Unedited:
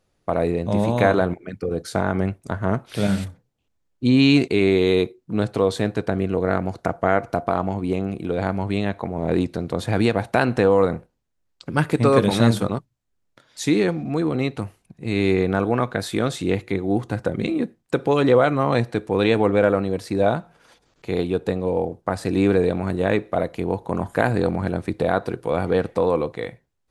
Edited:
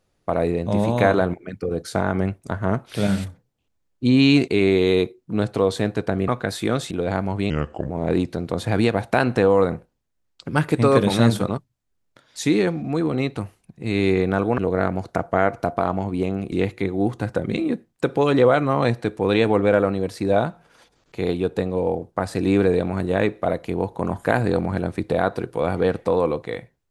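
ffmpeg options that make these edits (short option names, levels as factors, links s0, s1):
-filter_complex "[0:a]asplit=7[s0][s1][s2][s3][s4][s5][s6];[s0]atrim=end=6.282[s7];[s1]atrim=start=15.788:end=16.422[s8];[s2]atrim=start=8.218:end=8.814[s9];[s3]atrim=start=8.81:end=9.11,asetpts=PTS-STARTPTS,asetrate=33075,aresample=44100[s10];[s4]atrim=start=9.106:end=15.792[s11];[s5]atrim=start=6.278:end=8.222[s12];[s6]atrim=start=16.418[s13];[s7][s8]acrossfade=d=0.004:c1=hsin:c2=hsin[s14];[s14][s9]acrossfade=d=0.004:c1=hsin:c2=hsin[s15];[s15][s10]acrossfade=d=0.004:c1=hsin:c2=hsin[s16];[s16][s11]acrossfade=d=0.004:c1=hsin:c2=hsin[s17];[s17][s12]acrossfade=d=0.004:c1=hsin:c2=hsin[s18];[s18][s13]acrossfade=d=0.004:c1=hsin:c2=hsin"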